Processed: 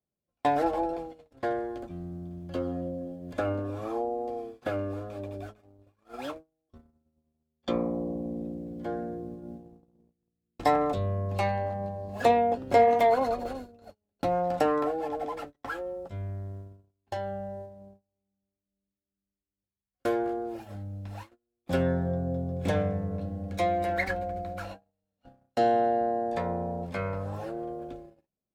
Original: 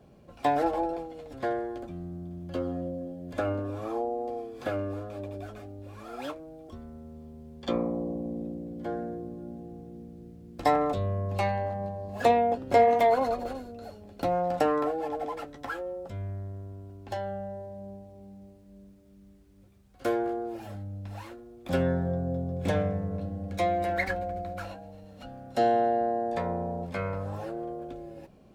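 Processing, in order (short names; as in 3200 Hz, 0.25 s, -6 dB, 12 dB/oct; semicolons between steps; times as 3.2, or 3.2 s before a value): gate -40 dBFS, range -36 dB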